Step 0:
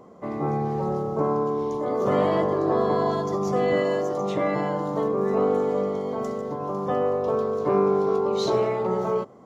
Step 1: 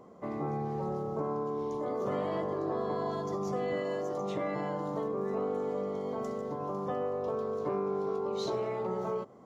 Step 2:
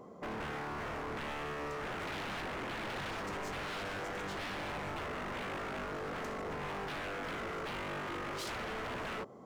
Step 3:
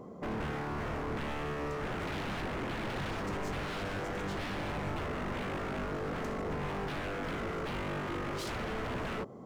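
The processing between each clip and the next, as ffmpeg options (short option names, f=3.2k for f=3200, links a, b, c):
-af "acompressor=threshold=-27dB:ratio=2.5,volume=-5dB"
-af "aeval=exprs='0.015*(abs(mod(val(0)/0.015+3,4)-2)-1)':c=same,volume=1.5dB"
-af "lowshelf=f=380:g=9"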